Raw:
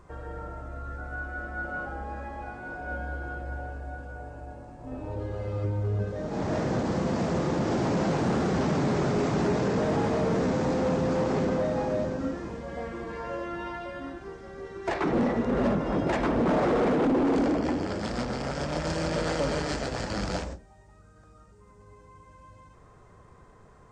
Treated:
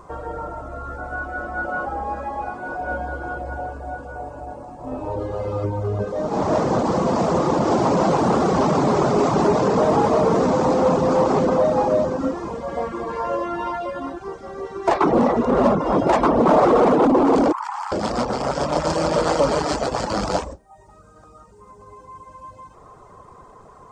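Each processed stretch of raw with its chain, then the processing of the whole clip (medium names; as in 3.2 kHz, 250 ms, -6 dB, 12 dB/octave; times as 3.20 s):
17.52–17.92 s: steep high-pass 860 Hz 72 dB/octave + peaking EQ 4 kHz -14.5 dB 2.5 oct + level flattener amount 100%
whole clip: FFT filter 100 Hz 0 dB, 1.1 kHz +11 dB, 1.7 kHz -2 dB; reverb removal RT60 0.56 s; treble shelf 3 kHz +9 dB; trim +3.5 dB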